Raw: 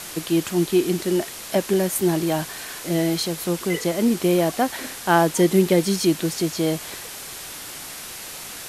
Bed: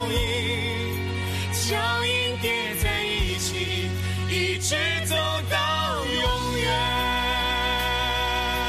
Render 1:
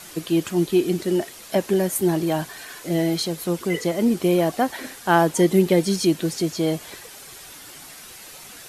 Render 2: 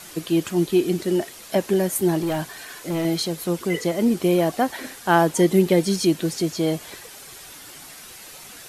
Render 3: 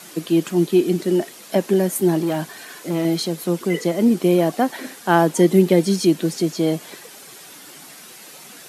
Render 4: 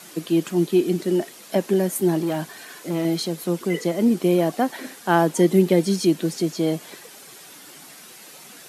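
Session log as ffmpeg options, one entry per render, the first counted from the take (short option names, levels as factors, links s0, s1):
-af "afftdn=nr=8:nf=-36"
-filter_complex "[0:a]asettb=1/sr,asplit=3[s0][s1][s2];[s0]atrim=end=2.194[s3];[s1]atrim=start=2.19:end=3.05,asetpts=PTS-STARTPTS,afade=t=in:d=0.004:c=qsin,afade=t=out:st=0.856:d=0.004:c=qsin,volume=10,asoftclip=hard,volume=0.1[s4];[s2]atrim=start=3.046[s5];[s3][s4]acrossfade=d=0.004:c1=hsin:c2=qsin[s6];[s6][s5]acrossfade=d=0.004:c1=qsin:c2=hsin"
-af "highpass=f=160:w=0.5412,highpass=f=160:w=1.3066,lowshelf=f=390:g=5.5"
-af "volume=0.75"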